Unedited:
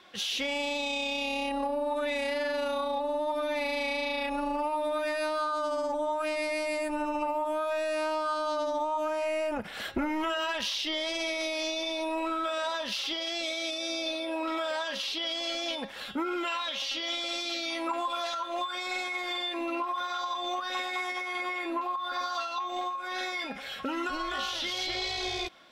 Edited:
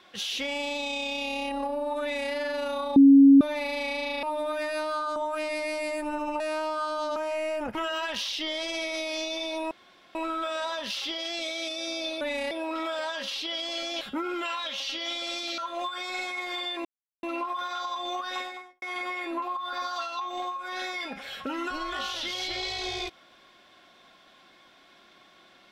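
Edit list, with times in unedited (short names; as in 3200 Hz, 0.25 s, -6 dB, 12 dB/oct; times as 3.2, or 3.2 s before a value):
2.02–2.32 copy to 14.23
2.96–3.41 bleep 276 Hz -10.5 dBFS
4.23–4.69 cut
5.62–6.03 cut
7.27–7.88 cut
8.64–9.07 cut
9.66–10.21 cut
12.17 insert room tone 0.44 s
15.73–16.03 cut
17.6–18.35 cut
19.62 insert silence 0.38 s
20.72–21.21 studio fade out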